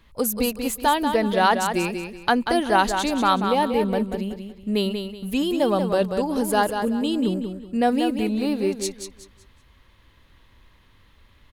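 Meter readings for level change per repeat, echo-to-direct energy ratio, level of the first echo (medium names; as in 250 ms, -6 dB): -11.0 dB, -6.5 dB, -7.0 dB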